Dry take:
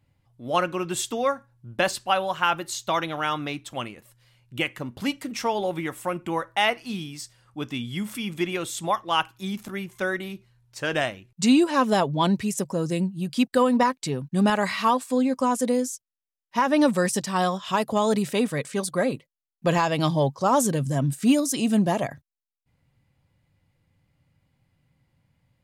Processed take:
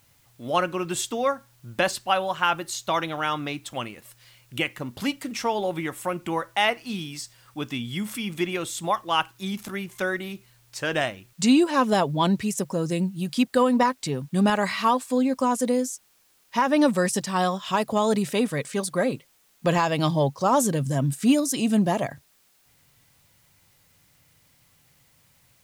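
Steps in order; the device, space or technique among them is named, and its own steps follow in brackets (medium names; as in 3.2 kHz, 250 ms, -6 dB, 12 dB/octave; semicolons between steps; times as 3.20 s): noise-reduction cassette on a plain deck (tape noise reduction on one side only encoder only; wow and flutter 12 cents; white noise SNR 37 dB)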